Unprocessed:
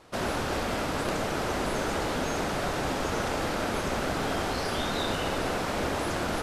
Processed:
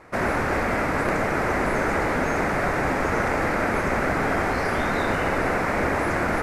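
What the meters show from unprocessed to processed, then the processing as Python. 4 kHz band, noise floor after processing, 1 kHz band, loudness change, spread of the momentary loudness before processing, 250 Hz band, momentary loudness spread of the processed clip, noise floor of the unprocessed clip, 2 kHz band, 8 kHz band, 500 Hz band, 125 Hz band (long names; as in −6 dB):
−5.0 dB, −25 dBFS, +6.5 dB, +6.0 dB, 1 LU, +5.5 dB, 1 LU, −31 dBFS, +9.0 dB, −2.5 dB, +6.0 dB, +5.5 dB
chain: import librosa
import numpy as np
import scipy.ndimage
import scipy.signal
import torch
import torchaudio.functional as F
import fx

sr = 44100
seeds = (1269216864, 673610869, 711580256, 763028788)

y = fx.high_shelf_res(x, sr, hz=2600.0, db=-7.0, q=3.0)
y = y * 10.0 ** (5.5 / 20.0)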